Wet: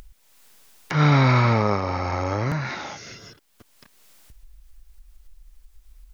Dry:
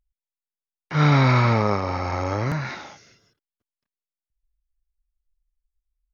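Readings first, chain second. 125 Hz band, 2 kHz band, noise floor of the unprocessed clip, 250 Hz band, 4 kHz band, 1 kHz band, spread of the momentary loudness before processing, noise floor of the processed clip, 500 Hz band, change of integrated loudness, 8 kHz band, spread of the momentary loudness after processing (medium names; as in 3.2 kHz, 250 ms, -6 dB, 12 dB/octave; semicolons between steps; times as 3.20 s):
0.0 dB, +0.5 dB, under -85 dBFS, 0.0 dB, +0.5 dB, 0.0 dB, 12 LU, -60 dBFS, 0.0 dB, -0.5 dB, no reading, 18 LU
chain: upward compressor, threshold -23 dBFS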